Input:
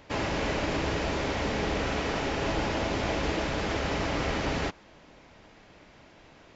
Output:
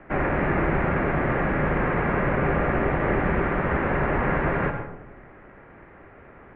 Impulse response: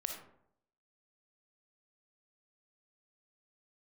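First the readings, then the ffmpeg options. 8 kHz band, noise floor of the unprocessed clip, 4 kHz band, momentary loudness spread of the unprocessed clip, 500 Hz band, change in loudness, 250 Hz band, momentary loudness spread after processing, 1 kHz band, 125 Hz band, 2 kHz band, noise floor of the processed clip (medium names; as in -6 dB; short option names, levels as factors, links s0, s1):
no reading, -55 dBFS, -14.5 dB, 1 LU, +5.5 dB, +5.5 dB, +6.0 dB, 2 LU, +6.5 dB, +8.0 dB, +6.5 dB, -48 dBFS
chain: -filter_complex "[0:a]asplit=2[s0][s1];[s1]aemphasis=mode=production:type=50kf[s2];[1:a]atrim=start_sample=2205,asetrate=25578,aresample=44100,lowpass=4000[s3];[s2][s3]afir=irnorm=-1:irlink=0,volume=1.19[s4];[s0][s4]amix=inputs=2:normalize=0,highpass=f=270:t=q:w=0.5412,highpass=f=270:t=q:w=1.307,lowpass=f=2300:t=q:w=0.5176,lowpass=f=2300:t=q:w=0.7071,lowpass=f=2300:t=q:w=1.932,afreqshift=-260"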